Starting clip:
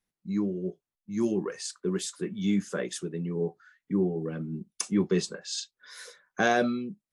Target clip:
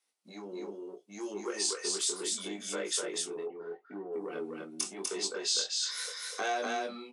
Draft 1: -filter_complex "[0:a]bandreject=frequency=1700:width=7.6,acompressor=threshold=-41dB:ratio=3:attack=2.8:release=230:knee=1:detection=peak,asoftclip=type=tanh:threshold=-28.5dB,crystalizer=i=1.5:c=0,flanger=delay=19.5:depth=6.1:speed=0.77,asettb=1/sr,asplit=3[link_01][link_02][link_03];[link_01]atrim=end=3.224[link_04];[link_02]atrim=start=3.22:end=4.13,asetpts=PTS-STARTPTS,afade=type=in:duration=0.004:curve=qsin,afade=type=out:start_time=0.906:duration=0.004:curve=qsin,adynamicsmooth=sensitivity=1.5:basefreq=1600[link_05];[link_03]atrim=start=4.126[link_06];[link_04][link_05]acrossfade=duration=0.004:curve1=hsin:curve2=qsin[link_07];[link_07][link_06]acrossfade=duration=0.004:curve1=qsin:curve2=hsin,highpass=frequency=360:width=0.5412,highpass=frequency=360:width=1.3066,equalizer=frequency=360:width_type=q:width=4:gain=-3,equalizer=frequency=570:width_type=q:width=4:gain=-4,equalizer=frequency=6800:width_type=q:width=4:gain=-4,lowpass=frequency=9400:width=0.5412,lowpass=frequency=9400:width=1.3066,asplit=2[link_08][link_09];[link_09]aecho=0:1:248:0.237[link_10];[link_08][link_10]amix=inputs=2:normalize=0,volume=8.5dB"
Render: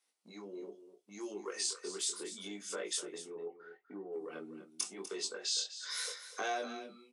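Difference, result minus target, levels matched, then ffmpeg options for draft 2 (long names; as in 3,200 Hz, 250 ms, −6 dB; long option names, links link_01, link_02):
echo-to-direct −10 dB; downward compressor: peak gain reduction +4.5 dB
-filter_complex "[0:a]bandreject=frequency=1700:width=7.6,acompressor=threshold=-34dB:ratio=3:attack=2.8:release=230:knee=1:detection=peak,asoftclip=type=tanh:threshold=-28.5dB,crystalizer=i=1.5:c=0,flanger=delay=19.5:depth=6.1:speed=0.77,asettb=1/sr,asplit=3[link_01][link_02][link_03];[link_01]atrim=end=3.224[link_04];[link_02]atrim=start=3.22:end=4.13,asetpts=PTS-STARTPTS,afade=type=in:duration=0.004:curve=qsin,afade=type=out:start_time=0.906:duration=0.004:curve=qsin,adynamicsmooth=sensitivity=1.5:basefreq=1600[link_05];[link_03]atrim=start=4.126[link_06];[link_04][link_05]acrossfade=duration=0.004:curve1=hsin:curve2=qsin[link_07];[link_07][link_06]acrossfade=duration=0.004:curve1=qsin:curve2=hsin,highpass=frequency=360:width=0.5412,highpass=frequency=360:width=1.3066,equalizer=frequency=360:width_type=q:width=4:gain=-3,equalizer=frequency=570:width_type=q:width=4:gain=-4,equalizer=frequency=6800:width_type=q:width=4:gain=-4,lowpass=frequency=9400:width=0.5412,lowpass=frequency=9400:width=1.3066,asplit=2[link_08][link_09];[link_09]aecho=0:1:248:0.75[link_10];[link_08][link_10]amix=inputs=2:normalize=0,volume=8.5dB"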